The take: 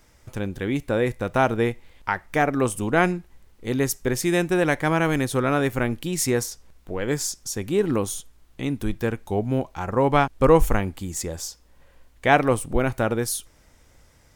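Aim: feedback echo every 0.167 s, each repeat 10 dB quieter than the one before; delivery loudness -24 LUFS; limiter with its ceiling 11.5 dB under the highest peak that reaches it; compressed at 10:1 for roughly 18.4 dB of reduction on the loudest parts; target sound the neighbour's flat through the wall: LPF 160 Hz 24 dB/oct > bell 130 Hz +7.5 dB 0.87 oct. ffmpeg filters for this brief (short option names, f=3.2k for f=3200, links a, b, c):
-af "acompressor=threshold=-30dB:ratio=10,alimiter=level_in=1dB:limit=-24dB:level=0:latency=1,volume=-1dB,lowpass=f=160:w=0.5412,lowpass=f=160:w=1.3066,equalizer=f=130:t=o:w=0.87:g=7.5,aecho=1:1:167|334|501|668:0.316|0.101|0.0324|0.0104,volume=16dB"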